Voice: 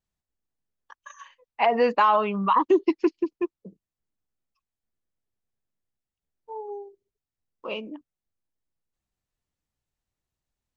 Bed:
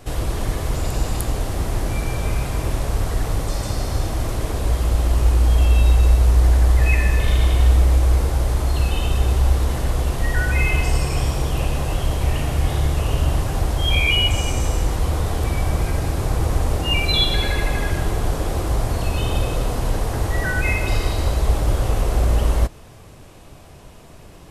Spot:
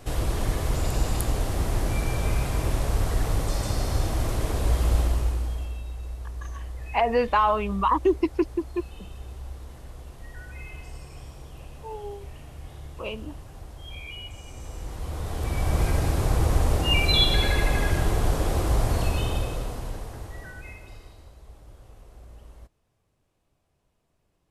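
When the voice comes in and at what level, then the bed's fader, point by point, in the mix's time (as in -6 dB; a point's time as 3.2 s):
5.35 s, -1.5 dB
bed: 4.98 s -3 dB
5.84 s -21.5 dB
14.42 s -21.5 dB
15.82 s -2 dB
19.01 s -2 dB
21.34 s -29.5 dB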